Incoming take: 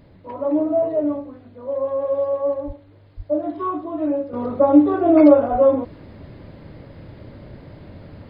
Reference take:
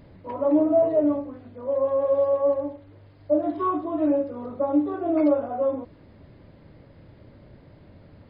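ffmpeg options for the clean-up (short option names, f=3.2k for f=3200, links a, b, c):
-filter_complex "[0:a]asplit=3[a][b][c];[a]afade=t=out:st=2.66:d=0.02[d];[b]highpass=f=140:w=0.5412,highpass=f=140:w=1.3066,afade=t=in:st=2.66:d=0.02,afade=t=out:st=2.78:d=0.02[e];[c]afade=t=in:st=2.78:d=0.02[f];[d][e][f]amix=inputs=3:normalize=0,asplit=3[g][h][i];[g]afade=t=out:st=3.16:d=0.02[j];[h]highpass=f=140:w=0.5412,highpass=f=140:w=1.3066,afade=t=in:st=3.16:d=0.02,afade=t=out:st=3.28:d=0.02[k];[i]afade=t=in:st=3.28:d=0.02[l];[j][k][l]amix=inputs=3:normalize=0,asplit=3[m][n][o];[m]afade=t=out:st=5.51:d=0.02[p];[n]highpass=f=140:w=0.5412,highpass=f=140:w=1.3066,afade=t=in:st=5.51:d=0.02,afade=t=out:st=5.63:d=0.02[q];[o]afade=t=in:st=5.63:d=0.02[r];[p][q][r]amix=inputs=3:normalize=0,agate=range=-21dB:threshold=-36dB,asetnsamples=n=441:p=0,asendcmd='4.33 volume volume -9.5dB',volume=0dB"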